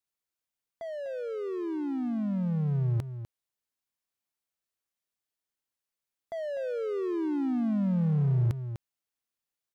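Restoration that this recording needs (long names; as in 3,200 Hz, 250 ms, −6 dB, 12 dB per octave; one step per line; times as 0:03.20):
clipped peaks rebuilt −20.5 dBFS
echo removal 249 ms −11 dB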